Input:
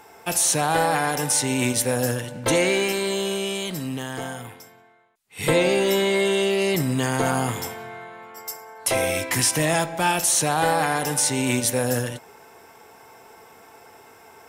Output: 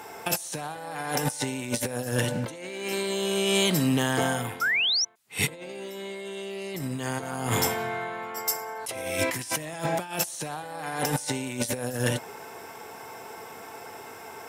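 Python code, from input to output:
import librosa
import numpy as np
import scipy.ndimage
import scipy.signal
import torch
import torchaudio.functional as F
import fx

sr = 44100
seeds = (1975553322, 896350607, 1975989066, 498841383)

y = scipy.signal.sosfilt(scipy.signal.butter(2, 83.0, 'highpass', fs=sr, output='sos'), x)
y = fx.over_compress(y, sr, threshold_db=-28.0, ratio=-0.5)
y = fx.spec_paint(y, sr, seeds[0], shape='rise', start_s=4.61, length_s=0.44, low_hz=1300.0, high_hz=6100.0, level_db=-24.0)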